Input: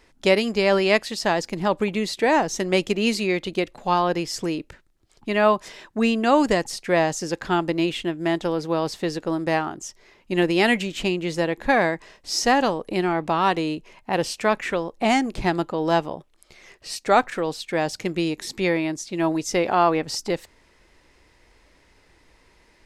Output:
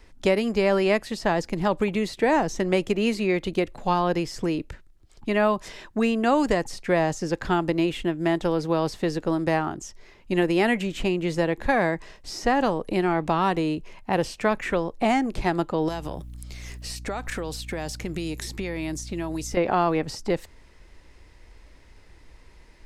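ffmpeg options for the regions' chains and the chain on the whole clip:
ffmpeg -i in.wav -filter_complex "[0:a]asettb=1/sr,asplit=3[link_01][link_02][link_03];[link_01]atrim=end=15.884[link_04];[link_02]atrim=start=15.88:end=19.57,asetpts=PTS-STARTPTS,afade=type=in:duration=0.004:curve=qsin,afade=type=out:start_time=3.686:duration=0.004:curve=qsin,acompressor=threshold=-28dB:ratio=10:attack=3.2:release=140:knee=1:detection=peak,aemphasis=mode=production:type=75kf,aeval=exprs='val(0)+0.00501*(sin(2*PI*60*n/s)+sin(2*PI*2*60*n/s)/2+sin(2*PI*3*60*n/s)/3+sin(2*PI*4*60*n/s)/4+sin(2*PI*5*60*n/s)/5)':channel_layout=same[link_05];[link_03]atrim=start=19.566[link_06];[link_04][link_05]acrossfade=duration=0.004:curve1=hsin:curve2=qsin[link_07];[link_07][link_06]acrossfade=duration=0.004:curve1=qsin:curve2=hsin,lowshelf=frequency=120:gain=12,acrossover=split=340|2400|7100[link_08][link_09][link_10][link_11];[link_08]acompressor=threshold=-26dB:ratio=4[link_12];[link_09]acompressor=threshold=-19dB:ratio=4[link_13];[link_10]acompressor=threshold=-41dB:ratio=4[link_14];[link_11]acompressor=threshold=-47dB:ratio=4[link_15];[link_12][link_13][link_14][link_15]amix=inputs=4:normalize=0" out.wav

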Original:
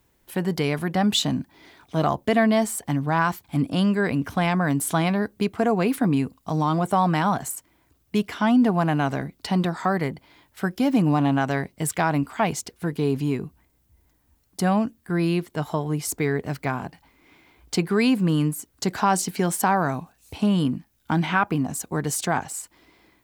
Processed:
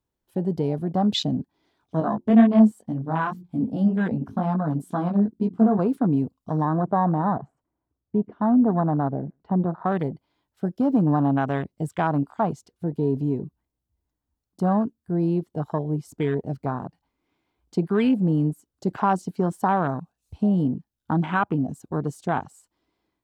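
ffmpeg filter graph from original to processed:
ffmpeg -i in.wav -filter_complex "[0:a]asettb=1/sr,asplit=3[link_01][link_02][link_03];[link_01]atrim=end=2.004[link_04];[link_02]atrim=start=2:end=5.79,asetpts=PTS-STARTPTS,afade=type=in:duration=0.004:curve=qsin,afade=type=out:start_time=3.786:duration=0.004:curve=qsin,equalizer=frequency=220:width=5.4:gain=12.5,bandreject=frequency=88.9:width_type=h:width=4,bandreject=frequency=177.8:width_type=h:width=4,bandreject=frequency=266.7:width_type=h:width=4,bandreject=frequency=355.6:width_type=h:width=4,flanger=delay=16:depth=4.3:speed=2[link_05];[link_03]atrim=start=5.786[link_06];[link_04][link_05]acrossfade=duration=0.004:curve1=hsin:curve2=qsin[link_07];[link_07][link_06]acrossfade=duration=0.004:curve1=qsin:curve2=hsin,asettb=1/sr,asplit=3[link_08][link_09][link_10];[link_08]atrim=end=6.654[link_11];[link_09]atrim=start=6.65:end=9.92,asetpts=PTS-STARTPTS,afade=type=in:duration=0.004:curve=qsin,afade=type=out:start_time=3.266:duration=0.004:curve=qsin,lowpass=1300,aecho=1:1:124:0.0631,atrim=end_sample=144207[link_12];[link_10]atrim=start=9.916[link_13];[link_11][link_12]acrossfade=duration=0.004:curve1=hsin:curve2=qsin[link_14];[link_14][link_13]acrossfade=duration=0.004:curve1=qsin:curve2=hsin,highshelf=frequency=8400:gain=-9,afwtdn=0.0398,equalizer=frequency=2100:width_type=o:width=0.76:gain=-7.5" out.wav

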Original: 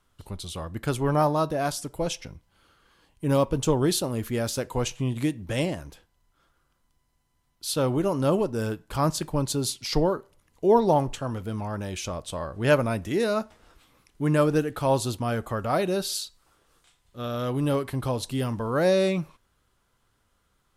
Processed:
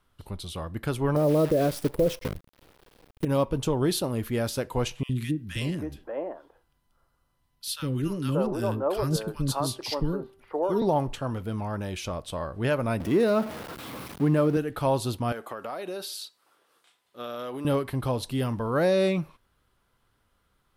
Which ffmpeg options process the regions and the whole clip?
ffmpeg -i in.wav -filter_complex "[0:a]asettb=1/sr,asplit=3[link_01][link_02][link_03];[link_01]atrim=end=1.164[link_04];[link_02]atrim=start=1.16:end=3.25,asetpts=PTS-STARTPTS,afade=type=in:duration=0.004:curve=qsin,afade=type=out:start_time=2.086:duration=0.004:curve=qsin,lowshelf=frequency=660:width_type=q:width=3:gain=8.5,acrusher=bits=6:dc=4:mix=0:aa=0.000001[link_05];[link_03]atrim=start=3.246[link_06];[link_04][link_05]acrossfade=duration=0.004:curve1=hsin:curve2=qsin[link_07];[link_07][link_06]acrossfade=duration=0.004:curve1=qsin:curve2=hsin,asettb=1/sr,asplit=3[link_08][link_09][link_10];[link_08]atrim=end=5.034[link_11];[link_09]atrim=start=5.03:end=10.82,asetpts=PTS-STARTPTS,afade=type=in:duration=0.004:curve=qsin,afade=type=out:start_time=5.786:duration=0.004:curve=qsin,bandreject=frequency=2200:width=17,bandreject=frequency=388.9:width_type=h:width=4,bandreject=frequency=777.8:width_type=h:width=4,bandreject=frequency=1166.7:width_type=h:width=4,bandreject=frequency=1555.6:width_type=h:width=4,bandreject=frequency=1944.5:width_type=h:width=4,acrossover=split=360|1400[link_12][link_13][link_14];[link_12]adelay=60[link_15];[link_13]adelay=580[link_16];[link_15][link_16][link_14]amix=inputs=3:normalize=0,atrim=end_sample=255339[link_17];[link_10]atrim=start=10.816[link_18];[link_11][link_17]acrossfade=duration=0.004:curve1=hsin:curve2=qsin[link_19];[link_19][link_18]acrossfade=duration=0.004:curve1=qsin:curve2=hsin,asettb=1/sr,asplit=3[link_20][link_21][link_22];[link_20]atrim=end=13.004[link_23];[link_21]atrim=start=13:end=14.57,asetpts=PTS-STARTPTS,afade=type=in:duration=0.004:curve=qsin,afade=type=out:start_time=1.566:duration=0.004:curve=qsin,aeval=exprs='val(0)+0.5*0.0266*sgn(val(0))':channel_layout=same,highpass=130,tiltshelf=frequency=820:gain=4[link_24];[link_22]atrim=start=14.566[link_25];[link_23][link_24]acrossfade=duration=0.004:curve1=hsin:curve2=qsin[link_26];[link_26][link_25]acrossfade=duration=0.004:curve1=qsin:curve2=hsin,asettb=1/sr,asplit=3[link_27][link_28][link_29];[link_27]atrim=end=15.324[link_30];[link_28]atrim=start=15.32:end=17.65,asetpts=PTS-STARTPTS,afade=type=in:duration=0.004:curve=qsin,afade=type=out:start_time=2.326:duration=0.004:curve=qsin,highpass=340,acompressor=threshold=-30dB:ratio=12:attack=3.2:release=140:knee=1:detection=peak[link_31];[link_29]atrim=start=17.646[link_32];[link_30][link_31]acrossfade=duration=0.004:curve1=hsin:curve2=qsin[link_33];[link_33][link_32]acrossfade=duration=0.004:curve1=qsin:curve2=hsin,equalizer=frequency=7000:width_type=o:width=0.73:gain=-7,alimiter=limit=-14.5dB:level=0:latency=1:release=163" out.wav

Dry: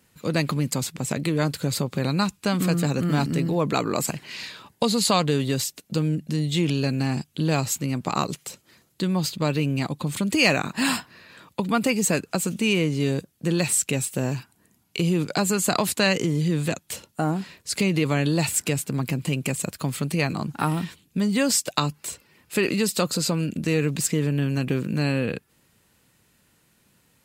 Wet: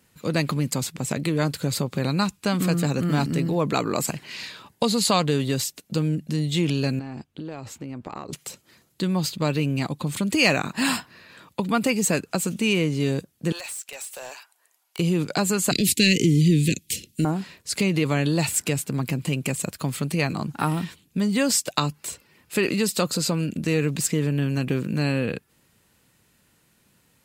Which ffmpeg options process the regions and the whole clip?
ffmpeg -i in.wav -filter_complex "[0:a]asettb=1/sr,asplit=3[link_01][link_02][link_03];[link_01]atrim=end=6.994[link_04];[link_02]atrim=start=6.99:end=8.33,asetpts=PTS-STARTPTS,afade=type=in:duration=0.004:curve=qsin,afade=type=out:start_time=1.336:duration=0.004:curve=qsin,lowpass=frequency=1200:poles=1,equalizer=frequency=160:width=2:gain=-9,acompressor=threshold=-29dB:ratio=12:attack=3.2:release=140:knee=1:detection=peak[link_05];[link_03]atrim=start=8.326[link_06];[link_04][link_05]acrossfade=duration=0.004:curve1=hsin:curve2=qsin[link_07];[link_07][link_06]acrossfade=duration=0.004:curve1=qsin:curve2=hsin,asettb=1/sr,asplit=3[link_08][link_09][link_10];[link_08]atrim=end=13.524[link_11];[link_09]atrim=start=13.52:end=14.99,asetpts=PTS-STARTPTS,afade=type=in:duration=0.004:curve=qsin,afade=type=out:start_time=1.466:duration=0.004:curve=qsin,highpass=frequency=610:width=0.5412,highpass=frequency=610:width=1.3066,acompressor=threshold=-30dB:ratio=5:attack=3.2:release=140:knee=1:detection=peak,aeval=exprs='0.0376*(abs(mod(val(0)/0.0376+3,4)-2)-1)':channel_layout=same[link_12];[link_10]atrim=start=14.986[link_13];[link_11][link_12]acrossfade=duration=0.004:curve1=hsin:curve2=qsin[link_14];[link_14][link_13]acrossfade=duration=0.004:curve1=qsin:curve2=hsin,asettb=1/sr,asplit=3[link_15][link_16][link_17];[link_15]atrim=end=15.714[link_18];[link_16]atrim=start=15.71:end=17.25,asetpts=PTS-STARTPTS,afade=type=in:duration=0.004:curve=qsin,afade=type=out:start_time=1.536:duration=0.004:curve=qsin,equalizer=frequency=600:width=3:gain=6.5,acontrast=42,asuperstop=centerf=910:order=8:qfactor=0.52[link_19];[link_17]atrim=start=17.246[link_20];[link_18][link_19]acrossfade=duration=0.004:curve1=hsin:curve2=qsin[link_21];[link_21][link_20]acrossfade=duration=0.004:curve1=qsin:curve2=hsin" out.wav

